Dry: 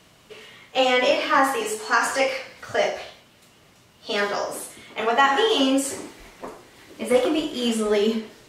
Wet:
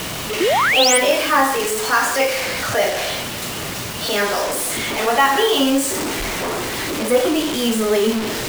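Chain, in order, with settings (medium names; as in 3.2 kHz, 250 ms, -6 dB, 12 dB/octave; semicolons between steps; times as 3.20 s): jump at every zero crossing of -24 dBFS; bit crusher 5-bit; painted sound rise, 0.40–0.98 s, 310–10000 Hz -18 dBFS; trim +1.5 dB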